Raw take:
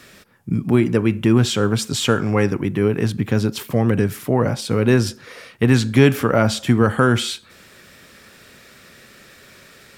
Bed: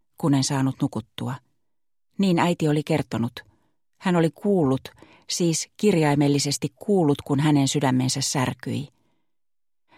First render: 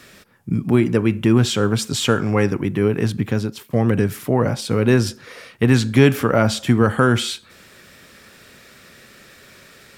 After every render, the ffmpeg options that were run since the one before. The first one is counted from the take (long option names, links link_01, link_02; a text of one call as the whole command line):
ffmpeg -i in.wav -filter_complex "[0:a]asplit=2[link_01][link_02];[link_01]atrim=end=3.73,asetpts=PTS-STARTPTS,afade=type=out:start_time=3.22:duration=0.51:silence=0.158489[link_03];[link_02]atrim=start=3.73,asetpts=PTS-STARTPTS,afade=type=in:duration=0.004:curve=hsin:silence=0.158489[link_04];[link_03][link_04]concat=n=2:v=0:a=1" out.wav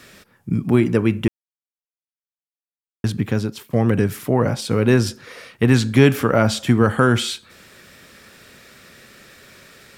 ffmpeg -i in.wav -filter_complex "[0:a]asplit=3[link_01][link_02][link_03];[link_01]atrim=end=1.28,asetpts=PTS-STARTPTS,afade=type=out:start_time=1.276:duration=0.004:curve=hsin[link_04];[link_02]atrim=start=1.28:end=3.04,asetpts=PTS-STARTPTS,volume=0[link_05];[link_03]atrim=start=3.04,asetpts=PTS-STARTPTS,afade=type=in:duration=0.004:curve=hsin[link_06];[link_04][link_05][link_06]concat=n=3:v=0:a=1" out.wav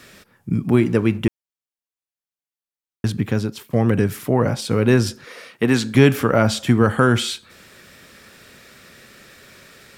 ffmpeg -i in.wav -filter_complex "[0:a]asettb=1/sr,asplit=3[link_01][link_02][link_03];[link_01]atrim=end=0.784[link_04];[link_02]atrim=start=0.78:end=1.19,asetpts=PTS-STARTPTS,afade=type=in:duration=0.004:curve=qsin,afade=type=out:start_time=0.406:duration=0.004:curve=qsin,aeval=exprs='sgn(val(0))*max(abs(val(0))-0.00531,0)':channel_layout=same[link_05];[link_03]atrim=start=1.186[link_06];[link_04][link_05]acrossfade=duration=0.004:curve1=hsin:curve2=qsin[link_07];[link_07][link_06]acrossfade=duration=0.004:curve1=qsin:curve2=hsin,asettb=1/sr,asplit=3[link_08][link_09][link_10];[link_08]atrim=end=5.244[link_11];[link_09]atrim=start=5.24:end=5.95,asetpts=PTS-STARTPTS,afade=type=in:duration=0.004:curve=qsin,afade=type=out:start_time=0.706:duration=0.004:curve=qsin,highpass=190[link_12];[link_10]atrim=start=5.946[link_13];[link_11][link_12]acrossfade=duration=0.004:curve1=hsin:curve2=qsin[link_14];[link_14][link_13]acrossfade=duration=0.004:curve1=qsin:curve2=hsin" out.wav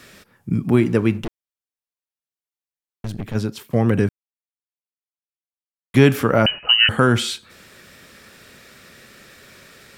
ffmpeg -i in.wav -filter_complex "[0:a]asplit=3[link_01][link_02][link_03];[link_01]afade=type=out:start_time=1.2:duration=0.02[link_04];[link_02]aeval=exprs='(tanh(15.8*val(0)+0.7)-tanh(0.7))/15.8':channel_layout=same,afade=type=in:start_time=1.2:duration=0.02,afade=type=out:start_time=3.34:duration=0.02[link_05];[link_03]afade=type=in:start_time=3.34:duration=0.02[link_06];[link_04][link_05][link_06]amix=inputs=3:normalize=0,asettb=1/sr,asplit=3[link_07][link_08][link_09];[link_07]atrim=end=6.464[link_10];[link_08]atrim=start=6.46:end=6.89,asetpts=PTS-STARTPTS,afade=type=in:duration=0.004:curve=qsin,afade=type=out:start_time=0.426:duration=0.004:curve=qsin,lowpass=frequency=2600:width_type=q:width=0.5098,lowpass=frequency=2600:width_type=q:width=0.6013,lowpass=frequency=2600:width_type=q:width=0.9,lowpass=frequency=2600:width_type=q:width=2.563,afreqshift=-3100[link_11];[link_09]atrim=start=6.886[link_12];[link_10][link_11]acrossfade=duration=0.004:curve1=hsin:curve2=qsin[link_13];[link_13][link_12]acrossfade=duration=0.004:curve1=qsin:curve2=hsin,asplit=3[link_14][link_15][link_16];[link_14]atrim=end=4.09,asetpts=PTS-STARTPTS,afade=type=out:start_time=4.086:duration=0.004:curve=hsin[link_17];[link_15]atrim=start=4.09:end=5.94,asetpts=PTS-STARTPTS,volume=0[link_18];[link_16]atrim=start=5.94,asetpts=PTS-STARTPTS,afade=type=in:duration=0.004:curve=hsin[link_19];[link_17][link_18][link_19]concat=n=3:v=0:a=1" out.wav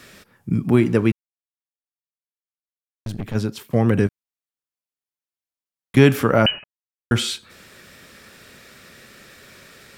ffmpeg -i in.wav -filter_complex "[0:a]asettb=1/sr,asplit=3[link_01][link_02][link_03];[link_01]atrim=end=4.074[link_04];[link_02]atrim=start=4.07:end=5.97,asetpts=PTS-STARTPTS,afade=type=in:duration=0.004:curve=qsin,afade=type=out:start_time=1.896:duration=0.004:curve=qsin,acompressor=threshold=-28dB:ratio=6:attack=3.2:release=140:knee=1:detection=peak[link_05];[link_03]atrim=start=5.966[link_06];[link_04][link_05]acrossfade=duration=0.004:curve1=hsin:curve2=qsin[link_07];[link_07][link_06]acrossfade=duration=0.004:curve1=qsin:curve2=hsin,asplit=5[link_08][link_09][link_10][link_11][link_12];[link_08]atrim=end=1.12,asetpts=PTS-STARTPTS,afade=type=out:start_time=1.116:duration=0.004:curve=hsin[link_13];[link_09]atrim=start=1.12:end=3.06,asetpts=PTS-STARTPTS,volume=0[link_14];[link_10]atrim=start=3.06:end=6.64,asetpts=PTS-STARTPTS,afade=type=in:duration=0.004:curve=hsin,afade=type=out:start_time=3.576:duration=0.004:curve=hsin[link_15];[link_11]atrim=start=6.64:end=7.11,asetpts=PTS-STARTPTS,volume=0[link_16];[link_12]atrim=start=7.11,asetpts=PTS-STARTPTS,afade=type=in:duration=0.004:curve=hsin[link_17];[link_13][link_14][link_15][link_16][link_17]concat=n=5:v=0:a=1" out.wav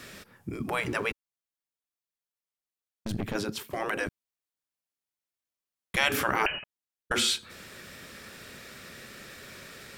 ffmpeg -i in.wav -af "afftfilt=real='re*lt(hypot(re,im),0.355)':imag='im*lt(hypot(re,im),0.355)':win_size=1024:overlap=0.75" out.wav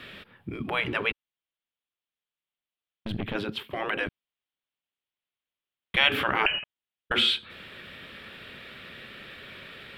ffmpeg -i in.wav -af "highshelf=frequency=4500:width_type=q:width=3:gain=-12" out.wav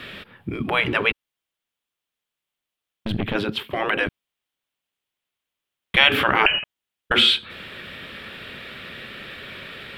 ffmpeg -i in.wav -af "volume=7dB,alimiter=limit=-1dB:level=0:latency=1" out.wav